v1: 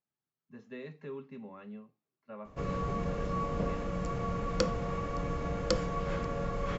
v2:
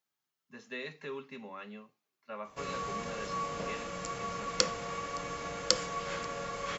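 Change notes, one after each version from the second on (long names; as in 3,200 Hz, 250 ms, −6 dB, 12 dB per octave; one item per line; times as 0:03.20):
speech +6.0 dB
master: add spectral tilt +4 dB per octave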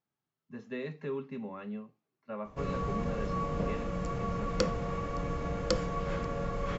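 master: add spectral tilt −4 dB per octave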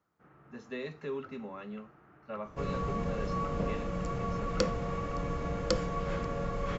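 speech: add bass and treble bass −5 dB, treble +8 dB
first sound: unmuted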